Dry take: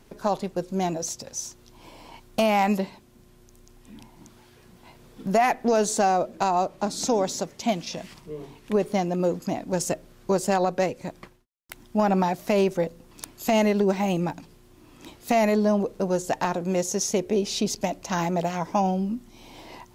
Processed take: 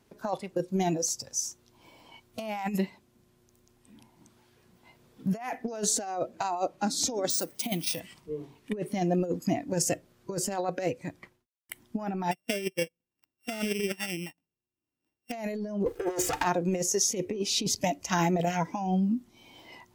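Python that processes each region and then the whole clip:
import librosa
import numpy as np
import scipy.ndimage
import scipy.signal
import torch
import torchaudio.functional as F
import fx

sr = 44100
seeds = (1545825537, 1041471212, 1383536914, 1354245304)

y = fx.chain(x, sr, fx.resample_bad(factor=3, down='filtered', up='hold'),
    fx.high_shelf(hz=12000.0, db=10.5), at=(7.3, 8.0))
y = fx.chain(y, sr, fx.sample_sort(block=16),
    fx.upward_expand(threshold_db=-39.0, expansion=2.5), at=(12.31, 15.32))
y = fx.chain(y, sr, fx.lower_of_two(delay_ms=2.4),
    fx.peak_eq(hz=110.0, db=-5.0, octaves=1.0),
    fx.leveller(passes=2), at=(15.86, 16.43))
y = scipy.signal.sosfilt(scipy.signal.butter(2, 56.0, 'highpass', fs=sr, output='sos'), y)
y = fx.noise_reduce_blind(y, sr, reduce_db=11)
y = fx.over_compress(y, sr, threshold_db=-26.0, ratio=-0.5)
y = F.gain(torch.from_numpy(y), -1.5).numpy()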